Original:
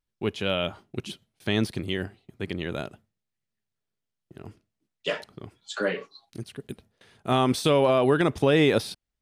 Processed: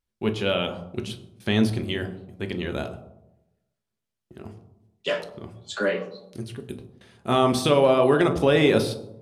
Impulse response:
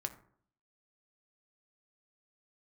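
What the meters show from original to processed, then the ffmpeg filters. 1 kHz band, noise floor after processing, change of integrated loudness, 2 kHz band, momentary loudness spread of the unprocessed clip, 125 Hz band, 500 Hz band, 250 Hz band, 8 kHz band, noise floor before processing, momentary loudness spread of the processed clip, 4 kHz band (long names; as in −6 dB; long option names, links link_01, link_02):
+2.5 dB, −84 dBFS, +2.0 dB, +1.5 dB, 21 LU, +2.0 dB, +3.0 dB, +2.5 dB, +1.5 dB, −84 dBFS, 19 LU, +1.5 dB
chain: -filter_complex "[1:a]atrim=start_sample=2205,asetrate=26019,aresample=44100[link_01];[0:a][link_01]afir=irnorm=-1:irlink=0"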